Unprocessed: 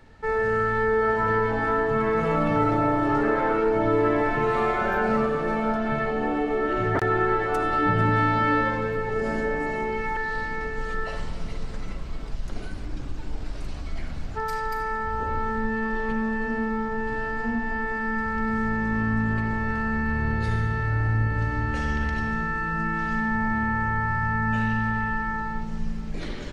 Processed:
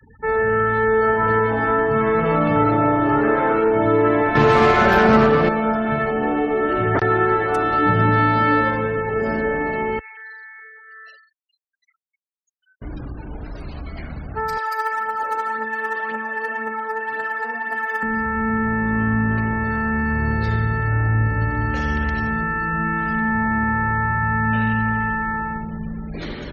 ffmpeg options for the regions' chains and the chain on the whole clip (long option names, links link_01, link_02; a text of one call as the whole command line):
ffmpeg -i in.wav -filter_complex "[0:a]asettb=1/sr,asplit=3[link_01][link_02][link_03];[link_01]atrim=end=4.354[link_04];[link_02]atrim=start=4.35:end=5.49,asetpts=PTS-STARTPTS,afade=type=in:duration=0.004:curve=qsin,afade=type=out:start_time=1.136:duration=0.004:curve=qsin,bass=frequency=250:gain=4,treble=frequency=4000:gain=4,aeval=exprs='clip(val(0),-1,0.0596)':channel_layout=same,acontrast=51[link_05];[link_03]atrim=start=5.486[link_06];[link_04][link_05]acrossfade=duration=0.004:curve1=hsin:curve2=qsin[link_07];[link_07][link_06]acrossfade=duration=0.004:curve1=qsin:curve2=hsin,asettb=1/sr,asplit=3[link_08][link_09][link_10];[link_08]atrim=end=9.994[link_11];[link_09]atrim=start=9.99:end=12.82,asetpts=PTS-STARTPTS,afade=type=in:duration=0.004:curve=qsin,afade=type=out:start_time=2.826:duration=0.004:curve=qsin,aderivative,asplit=2[link_12][link_13];[link_13]adelay=46,volume=-6.5dB[link_14];[link_12][link_14]amix=inputs=2:normalize=0,atrim=end_sample=124803,tremolo=f=200:d=0.519[link_15];[link_10]atrim=start=12.816[link_16];[link_11][link_15]acrossfade=duration=0.004:curve1=hsin:curve2=qsin[link_17];[link_17][link_16]acrossfade=duration=0.004:curve1=qsin:curve2=hsin,asettb=1/sr,asplit=3[link_18][link_19][link_20];[link_18]atrim=end=14.574[link_21];[link_19]atrim=start=14.57:end=18.03,asetpts=PTS-STARTPTS,afade=type=in:duration=0.004:curve=qsin,afade=type=out:start_time=3.456:duration=0.004:curve=qsin,highpass=580,aphaser=in_gain=1:out_gain=1:delay=2.6:decay=0.46:speed=1.9:type=triangular,acrusher=bits=4:mode=log:mix=0:aa=0.000001[link_22];[link_20]atrim=start=18.026[link_23];[link_21][link_22]acrossfade=duration=0.004:curve1=hsin:curve2=qsin[link_24];[link_24][link_23]acrossfade=duration=0.004:curve1=qsin:curve2=hsin,highpass=49,afftfilt=real='re*gte(hypot(re,im),0.00631)':imag='im*gte(hypot(re,im),0.00631)':win_size=1024:overlap=0.75,volume=5dB" out.wav